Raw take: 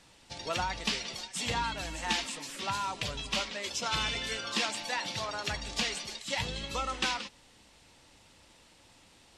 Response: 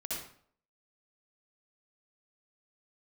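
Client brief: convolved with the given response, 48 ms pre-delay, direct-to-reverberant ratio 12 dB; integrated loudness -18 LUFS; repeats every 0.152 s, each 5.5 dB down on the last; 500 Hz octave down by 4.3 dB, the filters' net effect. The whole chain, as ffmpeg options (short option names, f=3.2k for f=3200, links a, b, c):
-filter_complex "[0:a]equalizer=f=500:t=o:g=-5.5,aecho=1:1:152|304|456|608|760|912|1064:0.531|0.281|0.149|0.079|0.0419|0.0222|0.0118,asplit=2[a][b];[1:a]atrim=start_sample=2205,adelay=48[c];[b][c]afir=irnorm=-1:irlink=0,volume=-14dB[d];[a][d]amix=inputs=2:normalize=0,volume=14dB"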